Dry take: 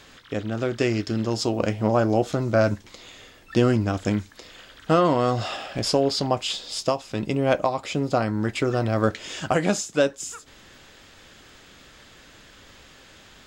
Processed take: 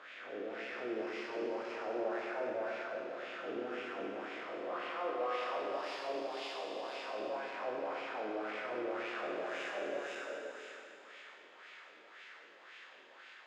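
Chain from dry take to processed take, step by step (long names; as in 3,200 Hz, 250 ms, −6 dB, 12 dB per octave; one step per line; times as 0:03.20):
spectrum smeared in time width 692 ms
meter weighting curve A
soft clipping −32.5 dBFS, distortion −8 dB
LFO wah 1.9 Hz 370–2,400 Hz, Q 2.9
four-comb reverb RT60 2.4 s, combs from 25 ms, DRR 0 dB
level +2.5 dB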